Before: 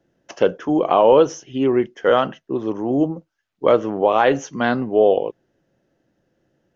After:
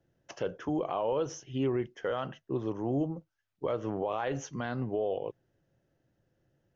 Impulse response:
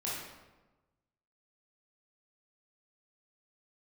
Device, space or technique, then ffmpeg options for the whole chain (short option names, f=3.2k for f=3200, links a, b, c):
car stereo with a boomy subwoofer: -af "lowshelf=f=160:t=q:w=1.5:g=6.5,alimiter=limit=-13.5dB:level=0:latency=1:release=132,volume=-8.5dB"